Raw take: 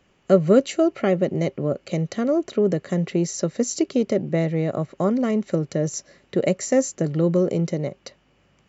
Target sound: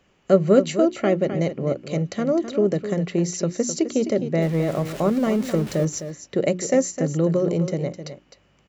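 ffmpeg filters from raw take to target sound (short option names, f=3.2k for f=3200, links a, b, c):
-filter_complex "[0:a]asettb=1/sr,asplit=3[a][b][c];[a]atrim=end=4.424[d];[b]atrim=start=4.42:end=5.85,asetpts=PTS-STARTPTS,afade=t=in:d=0.004:c=qsin,afade=t=out:st=1.426:d=0.004:c=qsin,aeval=exprs='val(0)+0.5*0.0251*sgn(val(0))':c=same[e];[c]atrim=start=5.846[f];[d][e]acrossfade=d=0.004:c1=hsin:c2=qsin[g];[g][f]acrossfade=d=0.004:c1=qsin:c2=hsin,bandreject=f=60:t=h:w=6,bandreject=f=120:t=h:w=6,bandreject=f=180:t=h:w=6,bandreject=f=240:t=h:w=6,bandreject=f=300:t=h:w=6,bandreject=f=360:t=h:w=6,aecho=1:1:258:0.299"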